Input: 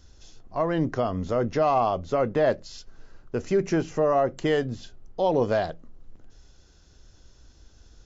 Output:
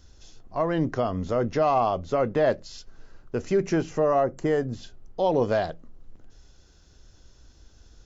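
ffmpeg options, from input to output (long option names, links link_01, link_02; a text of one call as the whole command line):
ffmpeg -i in.wav -filter_complex "[0:a]asettb=1/sr,asplit=3[link_01][link_02][link_03];[link_01]atrim=end=4.244[link_04];[link_02]atrim=start=4.24:end=4.73,asetpts=PTS-STARTPTS,afade=type=in:duration=0.004:curve=qsin,afade=type=out:start_time=0.486:duration=0.004:curve=qsin,equalizer=frequency=3300:width_type=o:width=1.1:gain=-13[link_05];[link_03]atrim=start=4.726[link_06];[link_04][link_05]acrossfade=duration=0.004:curve1=hsin:curve2=qsin[link_07];[link_07][link_06]acrossfade=duration=0.004:curve1=qsin:curve2=hsin" out.wav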